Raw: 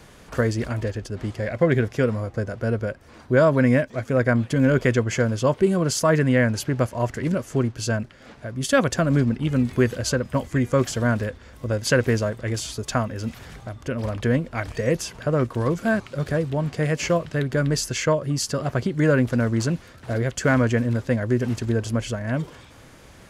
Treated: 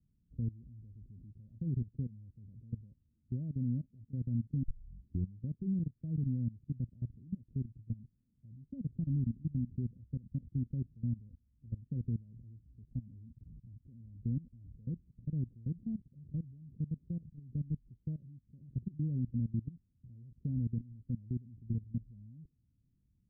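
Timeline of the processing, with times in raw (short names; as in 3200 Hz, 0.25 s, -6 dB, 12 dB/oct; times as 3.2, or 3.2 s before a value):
4.63 tape start 0.76 s
whole clip: level quantiser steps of 21 dB; inverse Chebyshev low-pass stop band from 1300 Hz, stop band 80 dB; gain -7.5 dB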